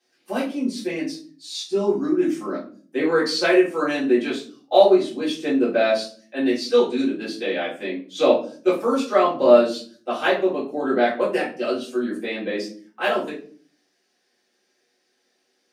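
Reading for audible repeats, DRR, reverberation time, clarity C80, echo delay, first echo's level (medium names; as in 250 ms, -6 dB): no echo, -11.0 dB, 0.45 s, 13.5 dB, no echo, no echo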